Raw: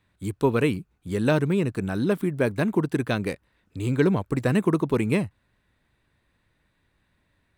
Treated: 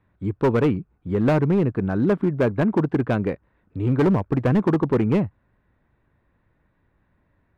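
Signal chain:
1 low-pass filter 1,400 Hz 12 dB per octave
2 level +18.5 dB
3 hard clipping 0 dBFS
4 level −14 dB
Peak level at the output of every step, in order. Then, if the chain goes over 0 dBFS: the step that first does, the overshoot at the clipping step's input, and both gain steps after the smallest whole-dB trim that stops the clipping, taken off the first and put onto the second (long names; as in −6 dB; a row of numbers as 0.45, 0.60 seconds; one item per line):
−9.0, +9.5, 0.0, −14.0 dBFS
step 2, 9.5 dB
step 2 +8.5 dB, step 4 −4 dB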